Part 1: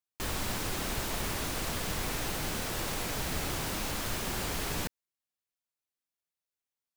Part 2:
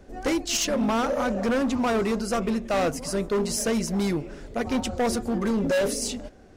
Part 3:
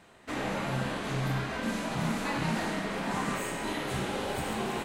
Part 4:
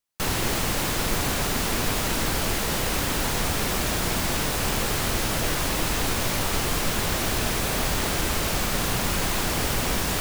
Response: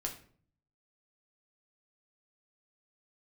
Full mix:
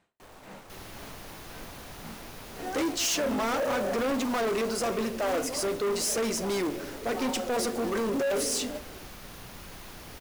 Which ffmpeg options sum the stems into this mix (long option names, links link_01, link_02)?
-filter_complex "[0:a]equalizer=frequency=680:width=0.48:gain=12.5,aeval=exprs='(tanh(28.2*val(0)+0.55)-tanh(0.55))/28.2':channel_layout=same,volume=-18dB[link_01];[1:a]highpass=frequency=260:width=0.5412,highpass=frequency=260:width=1.3066,acrusher=bits=3:mode=log:mix=0:aa=0.000001,adelay=2500,volume=1.5dB,asplit=2[link_02][link_03];[link_03]volume=-6.5dB[link_04];[2:a]aeval=exprs='val(0)*pow(10,-35*(0.5-0.5*cos(2*PI*1.9*n/s))/20)':channel_layout=same,volume=-13dB[link_05];[3:a]equalizer=frequency=7800:width_type=o:width=0.25:gain=-6.5,adelay=500,volume=-19.5dB[link_06];[4:a]atrim=start_sample=2205[link_07];[link_04][link_07]afir=irnorm=-1:irlink=0[link_08];[link_01][link_02][link_05][link_06][link_08]amix=inputs=5:normalize=0,asoftclip=type=tanh:threshold=-25dB"